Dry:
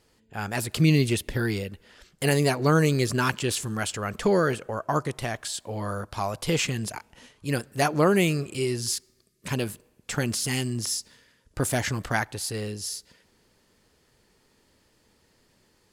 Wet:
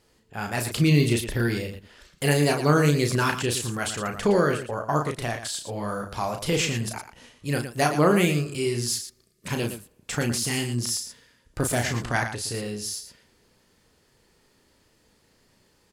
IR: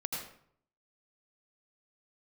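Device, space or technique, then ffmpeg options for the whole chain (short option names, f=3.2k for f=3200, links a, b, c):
slapback doubling: -filter_complex "[0:a]asplit=3[a][b][c];[b]adelay=34,volume=-5.5dB[d];[c]adelay=115,volume=-10dB[e];[a][d][e]amix=inputs=3:normalize=0,asettb=1/sr,asplit=3[f][g][h];[f]atrim=end=12.034[i];[g]atrim=start=12.03:end=12.54,asetpts=PTS-STARTPTS,afade=t=in:d=0.004:c=qsin,afade=t=out:st=0.506:d=0.004:c=qsin,lowpass=f=11k:w=0.5412,lowpass=f=11k:w=1.3066[j];[h]atrim=start=12.536[k];[i][j]acrossfade=d=0.004:c1=hsin:c2=qsin[l];[l][k]acrossfade=d=0.004:c1=qsin:c2=hsin"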